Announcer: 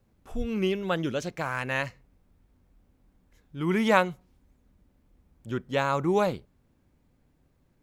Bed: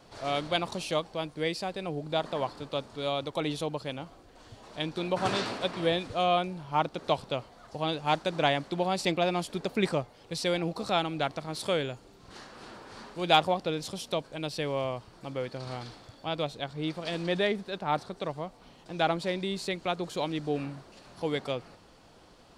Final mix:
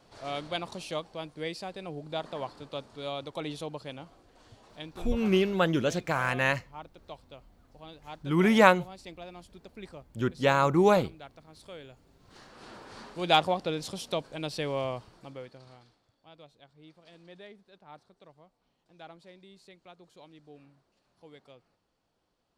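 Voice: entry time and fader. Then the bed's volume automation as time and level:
4.70 s, +2.5 dB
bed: 0:04.52 −5 dB
0:05.36 −17.5 dB
0:11.71 −17.5 dB
0:12.75 −0.5 dB
0:14.99 −0.5 dB
0:15.99 −21.5 dB

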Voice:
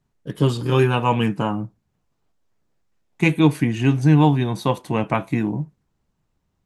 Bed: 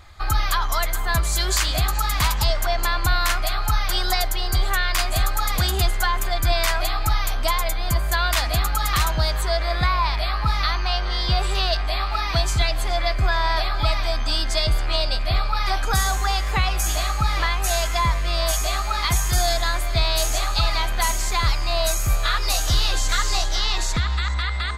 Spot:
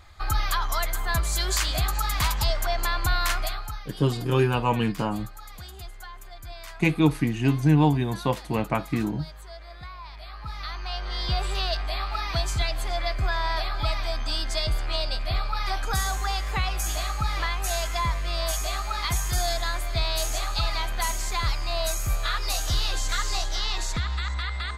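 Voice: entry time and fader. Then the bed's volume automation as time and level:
3.60 s, −4.5 dB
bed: 0:03.43 −4 dB
0:03.90 −20.5 dB
0:10.03 −20.5 dB
0:11.24 −5.5 dB

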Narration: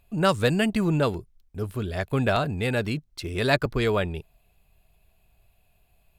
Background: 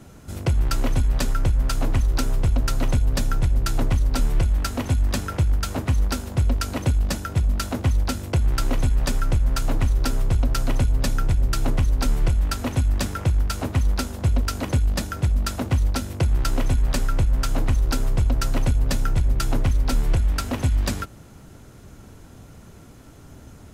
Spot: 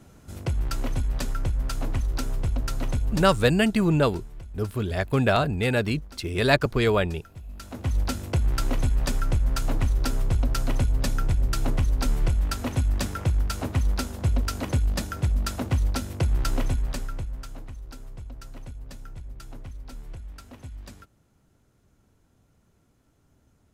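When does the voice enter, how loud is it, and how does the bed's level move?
3.00 s, +2.0 dB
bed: 0:03.13 −6 dB
0:03.67 −21 dB
0:07.43 −21 dB
0:07.98 −3 dB
0:16.60 −3 dB
0:17.71 −19.5 dB

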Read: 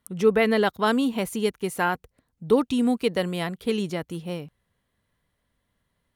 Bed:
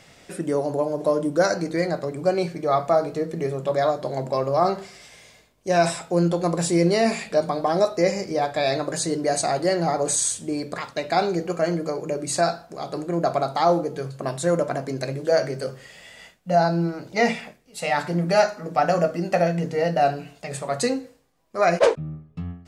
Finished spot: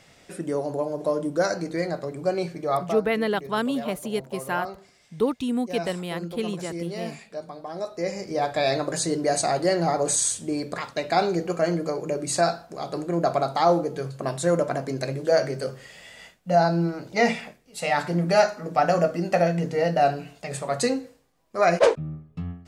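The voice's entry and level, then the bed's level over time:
2.70 s, −3.5 dB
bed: 0:02.79 −3.5 dB
0:03.03 −14 dB
0:07.68 −14 dB
0:08.48 −0.5 dB

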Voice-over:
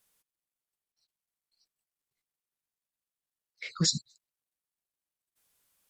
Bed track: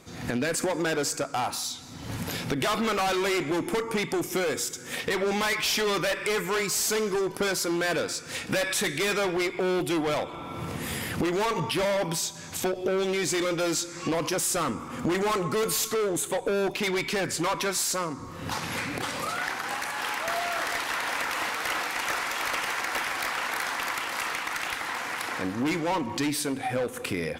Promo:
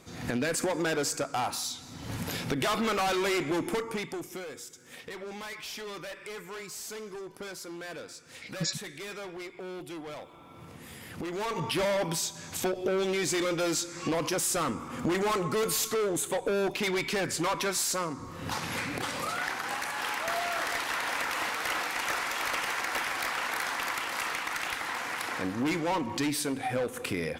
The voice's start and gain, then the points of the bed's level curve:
4.80 s, −5.5 dB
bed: 0:03.68 −2 dB
0:04.50 −14 dB
0:10.98 −14 dB
0:11.72 −2 dB

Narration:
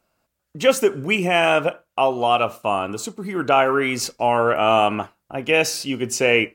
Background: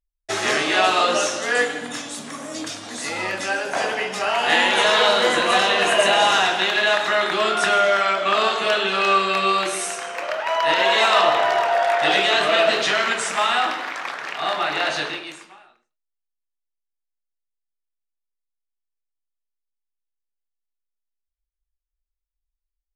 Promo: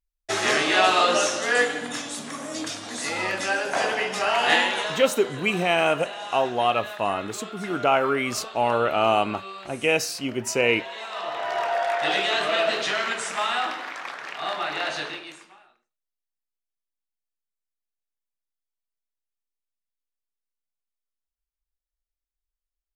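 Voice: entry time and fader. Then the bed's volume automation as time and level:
4.35 s, −4.0 dB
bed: 0:04.52 −1 dB
0:05.12 −19 dB
0:11.08 −19 dB
0:11.63 −5.5 dB

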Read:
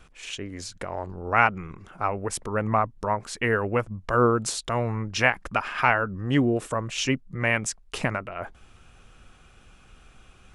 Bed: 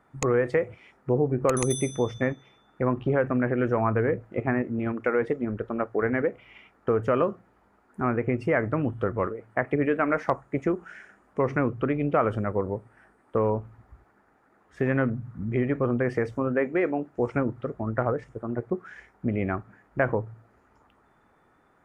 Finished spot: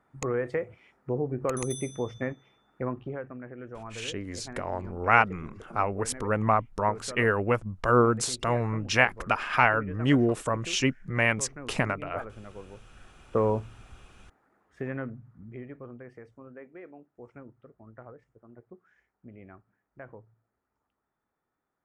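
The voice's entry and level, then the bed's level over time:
3.75 s, −0.5 dB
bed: 0:02.83 −6 dB
0:03.38 −17.5 dB
0:12.73 −17.5 dB
0:13.16 −0.5 dB
0:13.96 −0.5 dB
0:16.14 −21.5 dB

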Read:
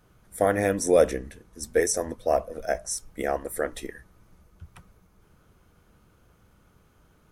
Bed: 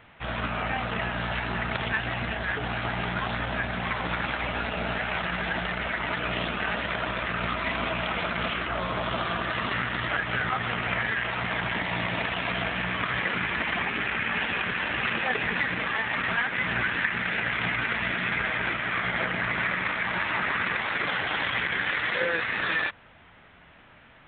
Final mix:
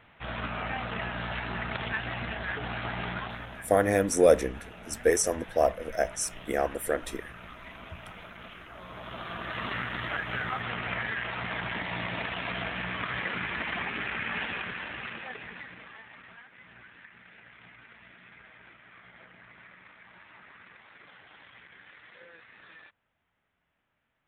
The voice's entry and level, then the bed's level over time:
3.30 s, −0.5 dB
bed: 0:03.12 −4.5 dB
0:03.72 −17.5 dB
0:08.70 −17.5 dB
0:09.64 −5 dB
0:14.42 −5 dB
0:16.48 −25.5 dB

